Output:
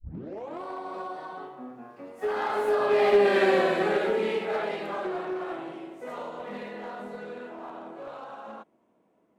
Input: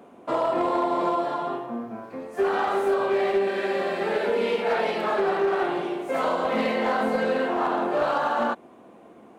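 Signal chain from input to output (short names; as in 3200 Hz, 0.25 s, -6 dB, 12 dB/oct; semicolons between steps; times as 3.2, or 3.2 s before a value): tape start at the beginning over 0.65 s; Doppler pass-by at 3.39, 23 m/s, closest 8.2 m; gain +5 dB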